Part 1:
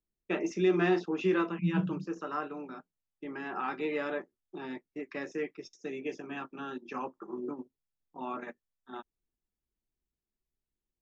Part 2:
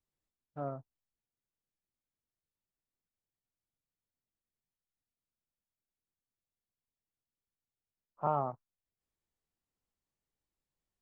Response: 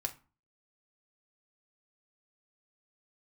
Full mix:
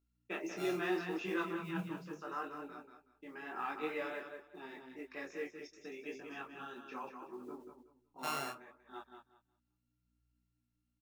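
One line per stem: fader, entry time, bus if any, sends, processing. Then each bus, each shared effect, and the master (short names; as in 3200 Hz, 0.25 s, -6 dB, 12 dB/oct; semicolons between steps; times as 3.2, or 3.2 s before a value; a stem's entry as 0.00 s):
-1.5 dB, 0.00 s, no send, echo send -7 dB, modulation noise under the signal 34 dB
-4.0 dB, 0.00 s, send -10.5 dB, no echo send, sample sorter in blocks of 32 samples; hum 60 Hz, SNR 21 dB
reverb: on, RT60 0.35 s, pre-delay 3 ms
echo: feedback echo 0.186 s, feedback 22%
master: low shelf 400 Hz -8 dB; detuned doubles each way 27 cents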